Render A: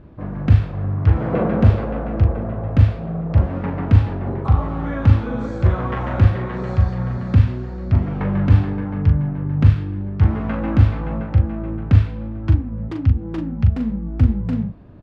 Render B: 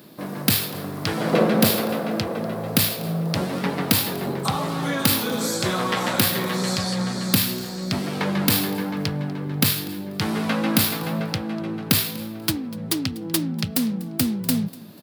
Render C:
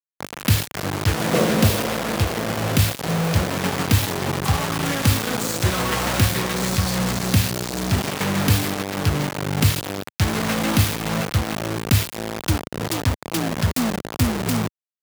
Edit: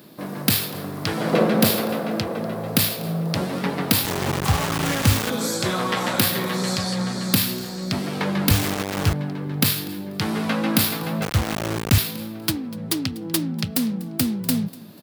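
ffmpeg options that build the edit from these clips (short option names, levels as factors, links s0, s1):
-filter_complex "[2:a]asplit=3[s0][s1][s2];[1:a]asplit=4[s3][s4][s5][s6];[s3]atrim=end=4.052[s7];[s0]atrim=start=4.048:end=5.302[s8];[s4]atrim=start=5.298:end=8.512[s9];[s1]atrim=start=8.508:end=9.132[s10];[s5]atrim=start=9.128:end=11.222[s11];[s2]atrim=start=11.218:end=11.982[s12];[s6]atrim=start=11.978[s13];[s7][s8]acrossfade=d=0.004:c1=hsin:c2=hsin[s14];[s14][s9]acrossfade=d=0.004:c1=hsin:c2=hsin[s15];[s15][s10]acrossfade=d=0.004:c1=hsin:c2=hsin[s16];[s16][s11]acrossfade=d=0.004:c1=hsin:c2=hsin[s17];[s17][s12]acrossfade=d=0.004:c1=hsin:c2=hsin[s18];[s18][s13]acrossfade=d=0.004:c1=hsin:c2=hsin"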